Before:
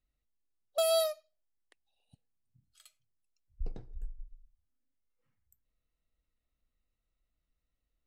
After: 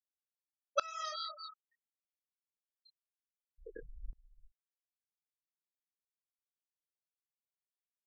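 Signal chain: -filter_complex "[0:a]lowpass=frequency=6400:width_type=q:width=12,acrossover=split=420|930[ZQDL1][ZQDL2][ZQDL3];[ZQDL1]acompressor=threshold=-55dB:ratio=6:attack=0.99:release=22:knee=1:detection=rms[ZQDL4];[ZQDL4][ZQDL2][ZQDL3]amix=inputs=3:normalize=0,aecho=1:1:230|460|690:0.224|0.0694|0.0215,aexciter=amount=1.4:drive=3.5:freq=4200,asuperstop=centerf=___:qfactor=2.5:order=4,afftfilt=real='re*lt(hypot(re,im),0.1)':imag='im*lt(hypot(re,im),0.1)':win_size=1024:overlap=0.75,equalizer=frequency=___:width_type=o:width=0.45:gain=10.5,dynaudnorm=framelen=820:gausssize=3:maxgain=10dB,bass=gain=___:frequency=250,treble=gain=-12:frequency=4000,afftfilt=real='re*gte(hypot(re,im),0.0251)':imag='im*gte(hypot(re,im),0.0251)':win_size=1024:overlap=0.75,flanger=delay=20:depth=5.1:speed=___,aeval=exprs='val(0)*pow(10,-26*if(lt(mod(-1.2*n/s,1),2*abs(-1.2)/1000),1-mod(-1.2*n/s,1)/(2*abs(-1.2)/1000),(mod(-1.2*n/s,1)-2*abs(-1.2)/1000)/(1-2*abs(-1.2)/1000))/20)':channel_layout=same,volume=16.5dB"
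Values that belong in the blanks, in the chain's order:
680, 1600, -5, 2.2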